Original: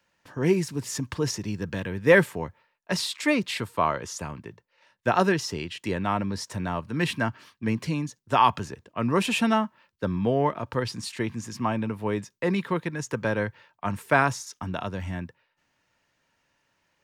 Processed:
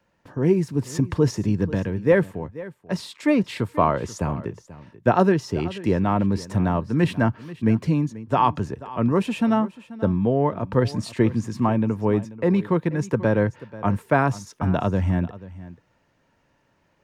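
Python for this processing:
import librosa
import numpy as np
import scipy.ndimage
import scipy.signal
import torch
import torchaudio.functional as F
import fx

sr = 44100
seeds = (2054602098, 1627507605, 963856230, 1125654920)

y = fx.tilt_shelf(x, sr, db=7.0, hz=1200.0)
y = fx.rider(y, sr, range_db=5, speed_s=0.5)
y = y + 10.0 ** (-17.5 / 20.0) * np.pad(y, (int(486 * sr / 1000.0), 0))[:len(y)]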